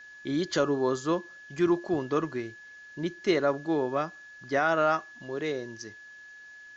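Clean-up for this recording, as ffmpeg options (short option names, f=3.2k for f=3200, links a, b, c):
-af "bandreject=f=1.7k:w=30,agate=range=-21dB:threshold=-41dB"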